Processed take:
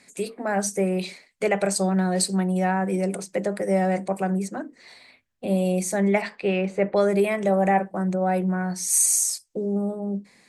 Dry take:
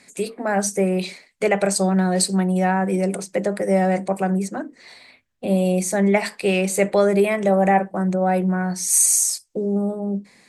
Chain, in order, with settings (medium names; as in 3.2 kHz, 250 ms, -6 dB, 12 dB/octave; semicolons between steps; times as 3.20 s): 6.21–6.95 s: low-pass 3.7 kHz -> 1.7 kHz 12 dB/octave; trim -3.5 dB